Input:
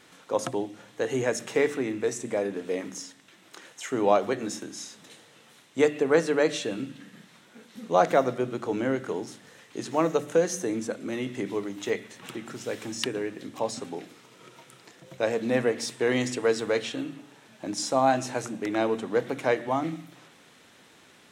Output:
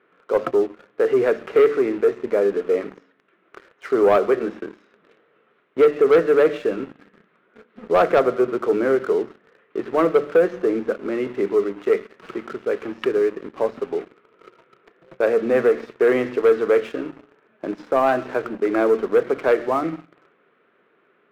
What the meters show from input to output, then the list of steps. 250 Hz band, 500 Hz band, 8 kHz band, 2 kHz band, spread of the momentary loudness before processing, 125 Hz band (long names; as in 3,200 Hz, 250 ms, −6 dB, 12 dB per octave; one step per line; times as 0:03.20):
+4.5 dB, +9.0 dB, below −10 dB, +4.0 dB, 16 LU, −2.0 dB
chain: loudspeaker in its box 230–2,200 Hz, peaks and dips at 270 Hz −5 dB, 410 Hz +8 dB, 850 Hz −8 dB, 1,300 Hz +5 dB, 1,900 Hz −4 dB
leveller curve on the samples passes 2